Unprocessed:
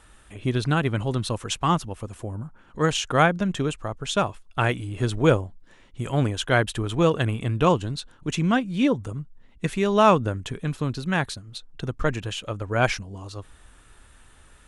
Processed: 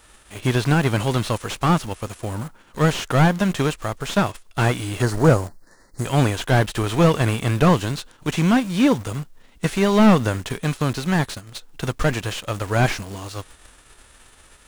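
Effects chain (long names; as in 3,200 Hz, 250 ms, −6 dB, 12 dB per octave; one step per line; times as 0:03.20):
spectral envelope flattened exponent 0.6
0:05.02–0:06.05: elliptic band-stop filter 1,900–4,300 Hz
in parallel at −6.5 dB: bit reduction 6 bits
on the sum: slew-rate limiting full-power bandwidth 160 Hz
level +1 dB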